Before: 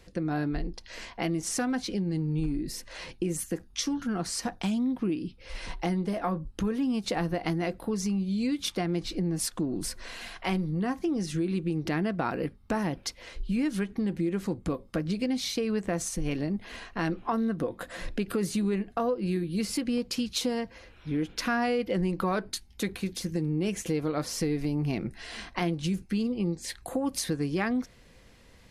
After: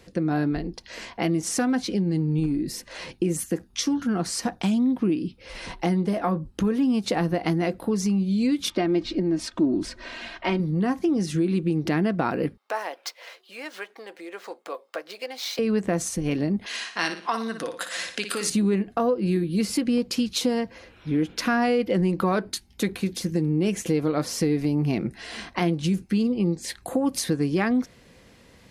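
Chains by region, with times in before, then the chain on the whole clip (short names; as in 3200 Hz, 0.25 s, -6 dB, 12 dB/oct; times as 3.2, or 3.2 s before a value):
8.7–10.6 LPF 4400 Hz + comb 3.2 ms, depth 57%
12.57–15.59 median filter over 5 samples + HPF 550 Hz 24 dB/oct
16.66–18.5 weighting filter ITU-R 468 + flutter echo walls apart 9.9 m, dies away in 0.41 s
whole clip: HPF 250 Hz 6 dB/oct; low shelf 350 Hz +8.5 dB; gain +3.5 dB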